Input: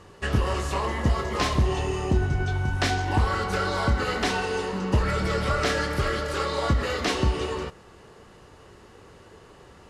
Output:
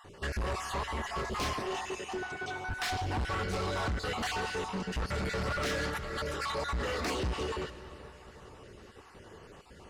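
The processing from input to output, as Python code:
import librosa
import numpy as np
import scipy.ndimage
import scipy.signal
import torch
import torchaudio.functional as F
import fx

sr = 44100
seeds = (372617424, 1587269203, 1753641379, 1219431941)

y = fx.spec_dropout(x, sr, seeds[0], share_pct=26)
y = fx.highpass(y, sr, hz=360.0, slope=12, at=(1.56, 2.65))
y = fx.over_compress(y, sr, threshold_db=-33.0, ratio=-1.0, at=(5.9, 6.52))
y = 10.0 ** (-28.0 / 20.0) * np.tanh(y / 10.0 ** (-28.0 / 20.0))
y = fx.rev_freeverb(y, sr, rt60_s=4.5, hf_ratio=0.8, predelay_ms=65, drr_db=13.5)
y = y * 10.0 ** (-1.5 / 20.0)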